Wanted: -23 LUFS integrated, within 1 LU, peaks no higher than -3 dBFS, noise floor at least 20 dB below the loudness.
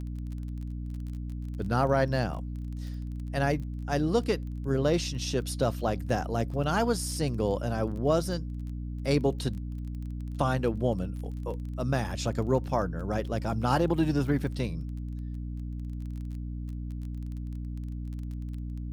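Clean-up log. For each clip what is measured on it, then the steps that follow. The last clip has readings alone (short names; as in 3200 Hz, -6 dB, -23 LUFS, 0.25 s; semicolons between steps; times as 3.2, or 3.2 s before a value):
ticks 23/s; hum 60 Hz; harmonics up to 300 Hz; hum level -33 dBFS; loudness -31.0 LUFS; peak -11.5 dBFS; loudness target -23.0 LUFS
-> de-click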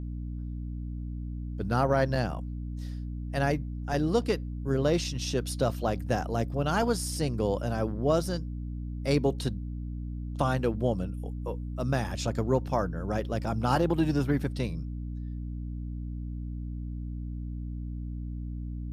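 ticks 0/s; hum 60 Hz; harmonics up to 300 Hz; hum level -33 dBFS
-> de-hum 60 Hz, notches 5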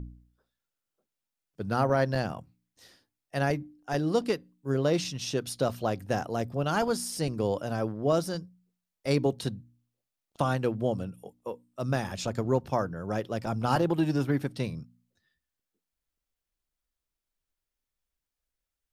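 hum none; loudness -30.0 LUFS; peak -12.0 dBFS; loudness target -23.0 LUFS
-> gain +7 dB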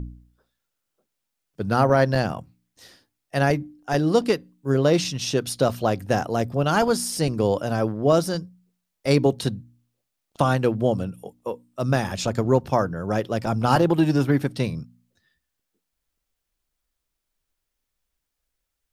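loudness -23.0 LUFS; peak -5.0 dBFS; noise floor -81 dBFS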